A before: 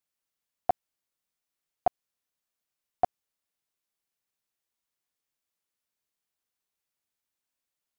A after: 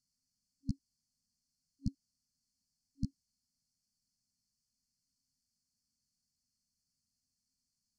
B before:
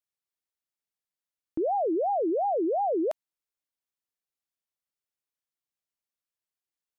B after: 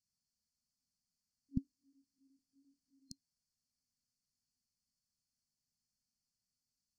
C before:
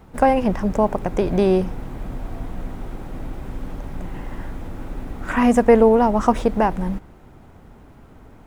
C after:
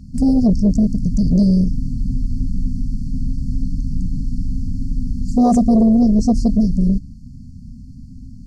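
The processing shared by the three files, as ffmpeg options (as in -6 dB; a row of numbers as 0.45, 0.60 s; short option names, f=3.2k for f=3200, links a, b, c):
-af "afftfilt=real='re*(1-between(b*sr/4096,270,4200))':imag='im*(1-between(b*sr/4096,270,4200))':win_size=4096:overlap=0.75,aeval=exprs='0.355*sin(PI/2*2.24*val(0)/0.355)':c=same,lowpass=5.7k"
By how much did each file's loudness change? -11.0, -16.5, +0.5 LU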